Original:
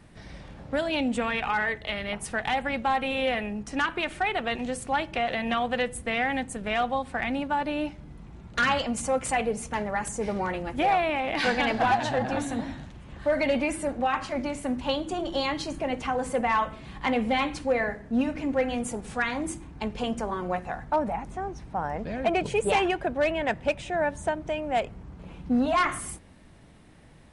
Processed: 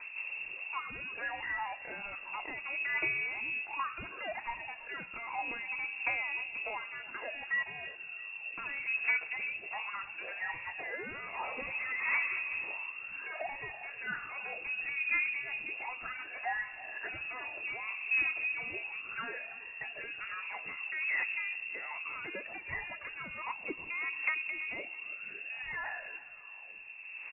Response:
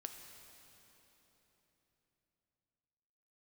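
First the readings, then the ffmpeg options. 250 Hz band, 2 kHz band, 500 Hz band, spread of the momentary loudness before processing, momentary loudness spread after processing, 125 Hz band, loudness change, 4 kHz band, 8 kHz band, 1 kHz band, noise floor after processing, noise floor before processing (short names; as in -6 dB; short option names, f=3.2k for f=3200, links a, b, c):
-26.0 dB, -2.5 dB, -21.5 dB, 9 LU, 10 LU, under -20 dB, -8.0 dB, under -10 dB, under -40 dB, -15.0 dB, -48 dBFS, -48 dBFS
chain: -filter_complex "[0:a]highpass=57,bandreject=f=60:t=h:w=6,bandreject=f=120:t=h:w=6,bandreject=f=180:t=h:w=6,bandreject=f=240:t=h:w=6,acrossover=split=81|1000[a][b][c];[a]acompressor=threshold=-57dB:ratio=4[d];[b]acompressor=threshold=-38dB:ratio=4[e];[c]acompressor=threshold=-36dB:ratio=4[f];[d][e][f]amix=inputs=3:normalize=0,asoftclip=type=tanh:threshold=-33.5dB,aphaser=in_gain=1:out_gain=1:delay=1.1:decay=0.76:speed=0.33:type=triangular,aecho=1:1:329|658|987|1316:0.119|0.0523|0.023|0.0101,asplit=2[g][h];[1:a]atrim=start_sample=2205[i];[h][i]afir=irnorm=-1:irlink=0,volume=-9.5dB[j];[g][j]amix=inputs=2:normalize=0,lowpass=f=2.4k:t=q:w=0.5098,lowpass=f=2.4k:t=q:w=0.6013,lowpass=f=2.4k:t=q:w=0.9,lowpass=f=2.4k:t=q:w=2.563,afreqshift=-2800,volume=-3.5dB"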